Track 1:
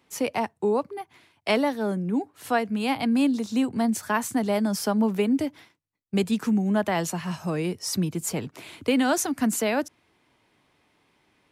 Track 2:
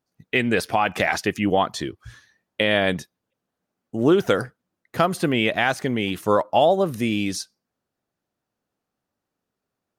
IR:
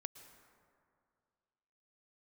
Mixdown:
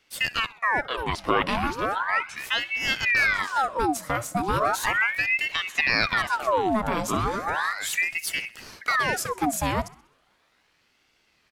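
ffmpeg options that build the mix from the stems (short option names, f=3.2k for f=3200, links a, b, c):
-filter_complex "[0:a]alimiter=limit=-15dB:level=0:latency=1:release=357,volume=2.5dB,asplit=3[a][b][c];[b]volume=-19.5dB[d];[1:a]acrossover=split=8200[e][f];[f]acompressor=threshold=-54dB:ratio=4:attack=1:release=60[g];[e][g]amix=inputs=2:normalize=0,adelay=550,volume=-0.5dB,asplit=2[h][i];[i]volume=-9.5dB[j];[c]apad=whole_len=464489[k];[h][k]sidechaincompress=threshold=-40dB:ratio=4:attack=16:release=289[l];[2:a]atrim=start_sample=2205[m];[j][m]afir=irnorm=-1:irlink=0[n];[d]aecho=0:1:64|128|192|256|320|384|448:1|0.5|0.25|0.125|0.0625|0.0312|0.0156[o];[a][l][n][o]amix=inputs=4:normalize=0,aeval=exprs='val(0)*sin(2*PI*1400*n/s+1400*0.75/0.36*sin(2*PI*0.36*n/s))':c=same"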